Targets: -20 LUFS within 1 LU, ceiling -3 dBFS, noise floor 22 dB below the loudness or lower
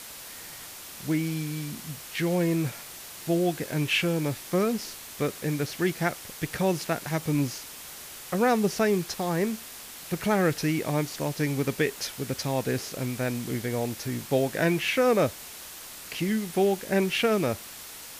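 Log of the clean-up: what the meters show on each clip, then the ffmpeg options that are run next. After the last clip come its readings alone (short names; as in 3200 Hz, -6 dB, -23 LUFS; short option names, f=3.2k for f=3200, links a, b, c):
noise floor -43 dBFS; noise floor target -50 dBFS; loudness -27.5 LUFS; peak -12.0 dBFS; loudness target -20.0 LUFS
-> -af "afftdn=nr=7:nf=-43"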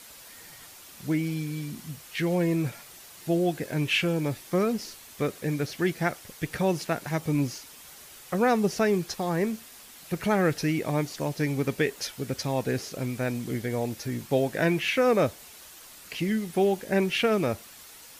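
noise floor -48 dBFS; noise floor target -50 dBFS
-> -af "afftdn=nr=6:nf=-48"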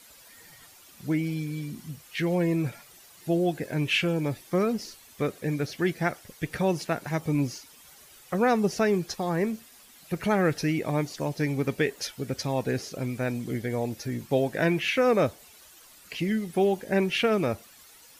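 noise floor -53 dBFS; loudness -28.0 LUFS; peak -12.0 dBFS; loudness target -20.0 LUFS
-> -af "volume=8dB"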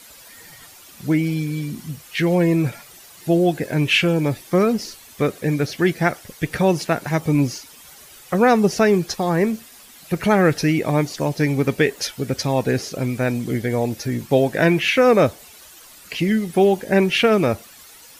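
loudness -20.0 LUFS; peak -4.0 dBFS; noise floor -45 dBFS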